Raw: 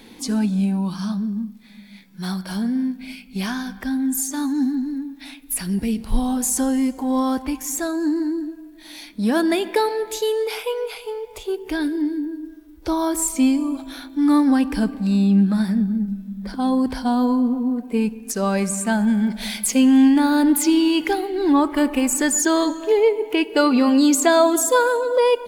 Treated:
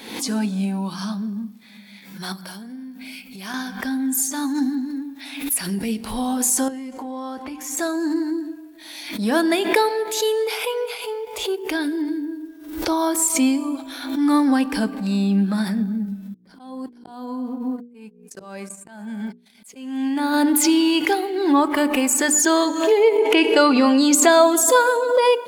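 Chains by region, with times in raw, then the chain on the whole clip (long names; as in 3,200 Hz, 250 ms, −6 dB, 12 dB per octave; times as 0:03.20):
0:02.32–0:03.54: high-shelf EQ 11,000 Hz +7.5 dB + downward compressor 8 to 1, threshold −32 dBFS
0:06.68–0:07.77: high-shelf EQ 6,000 Hz −9.5 dB + downward compressor 5 to 1, threshold −28 dBFS + double-tracking delay 13 ms −13 dB
0:16.34–0:20.34: noise gate −24 dBFS, range −43 dB + dynamic equaliser 5,700 Hz, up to −3 dB, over −50 dBFS, Q 2.8 + volume swells 797 ms
0:23.18–0:24.15: low-pass filter 10,000 Hz + envelope flattener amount 70%
whole clip: high-pass filter 320 Hz 6 dB per octave; mains-hum notches 60/120/180/240/300/360/420/480 Hz; background raised ahead of every attack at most 73 dB per second; level +2.5 dB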